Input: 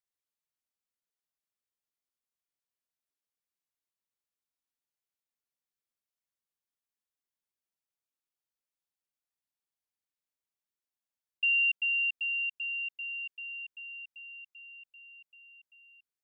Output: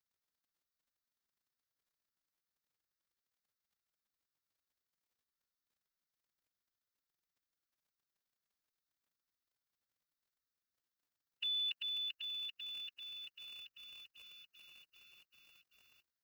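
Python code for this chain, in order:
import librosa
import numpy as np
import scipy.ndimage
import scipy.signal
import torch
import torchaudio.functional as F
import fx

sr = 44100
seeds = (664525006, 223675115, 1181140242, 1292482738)

y = fx.fixed_phaser(x, sr, hz=2600.0, stages=6)
y = fx.dmg_crackle(y, sr, seeds[0], per_s=38.0, level_db=-72.0)
y = fx.pitch_keep_formants(y, sr, semitones=4.0)
y = y * 10.0 ** (3.5 / 20.0)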